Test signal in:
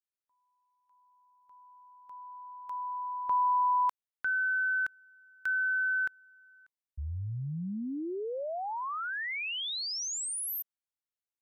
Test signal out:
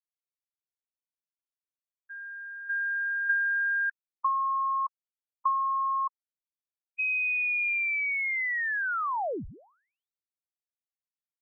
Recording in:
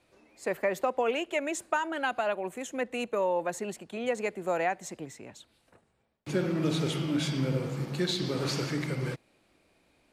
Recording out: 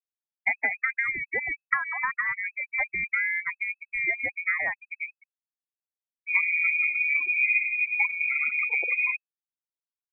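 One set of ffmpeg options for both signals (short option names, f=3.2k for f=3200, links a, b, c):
-filter_complex "[0:a]afftfilt=real='re*gte(hypot(re,im),0.0501)':imag='im*gte(hypot(re,im),0.0501)':win_size=1024:overlap=0.75,acrossover=split=170[a][b];[b]acompressor=threshold=-35dB:ratio=5:attack=90:release=868:knee=2.83:detection=peak[c];[a][c]amix=inputs=2:normalize=0,lowpass=f=2.2k:t=q:w=0.5098,lowpass=f=2.2k:t=q:w=0.6013,lowpass=f=2.2k:t=q:w=0.9,lowpass=f=2.2k:t=q:w=2.563,afreqshift=-2600,volume=7.5dB"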